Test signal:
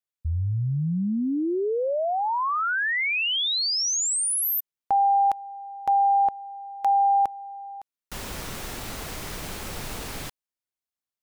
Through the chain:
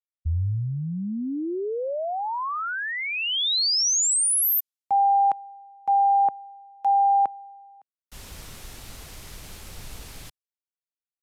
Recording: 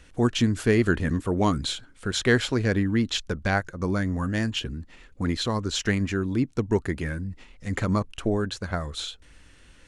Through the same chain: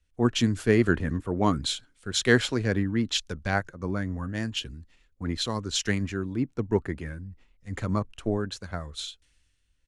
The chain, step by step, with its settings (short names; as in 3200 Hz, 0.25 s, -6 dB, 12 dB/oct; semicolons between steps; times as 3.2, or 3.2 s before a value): downsampling 32000 Hz; three-band expander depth 70%; gain -3 dB